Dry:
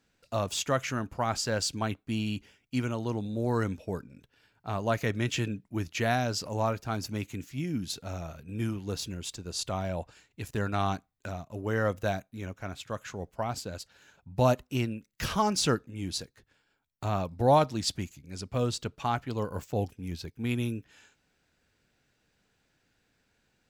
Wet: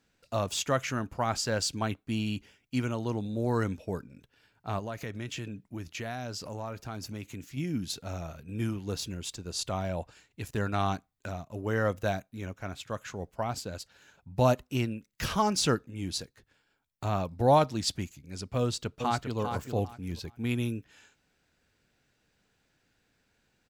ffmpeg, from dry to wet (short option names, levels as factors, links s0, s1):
-filter_complex "[0:a]asettb=1/sr,asplit=3[s0][s1][s2];[s0]atrim=end=4.794[s3];[s1]atrim=start=4.79:end=7.57,asetpts=PTS-STARTPTS,afade=t=in:d=0.004:c=qsin,afade=t=out:st=2.776:d=0.004:c=qsin,acompressor=threshold=0.0158:ratio=3:attack=3.2:release=140:knee=1:detection=peak[s4];[s2]atrim=start=7.566[s5];[s3][s4]acrossfade=d=0.004:c1=hsin:c2=qsin[s6];[s6][s5]acrossfade=d=0.004:c1=qsin:c2=hsin,asplit=2[s7][s8];[s8]afade=t=in:st=18.6:d=0.01,afade=t=out:st=19.39:d=0.01,aecho=0:1:400|800|1200:0.473151|0.0946303|0.0189261[s9];[s7][s9]amix=inputs=2:normalize=0"